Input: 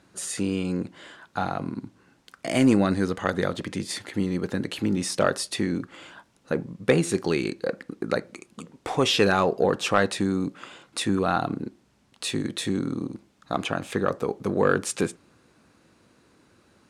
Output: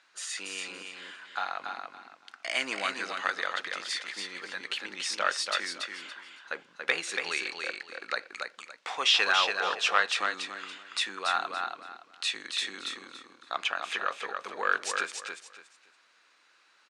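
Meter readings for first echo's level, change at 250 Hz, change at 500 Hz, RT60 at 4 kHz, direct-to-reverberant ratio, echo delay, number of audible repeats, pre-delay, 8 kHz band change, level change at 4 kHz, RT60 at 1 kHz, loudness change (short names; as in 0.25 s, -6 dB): -5.0 dB, -25.0 dB, -14.0 dB, none, none, 0.283 s, 3, none, -4.0 dB, +2.5 dB, none, -4.5 dB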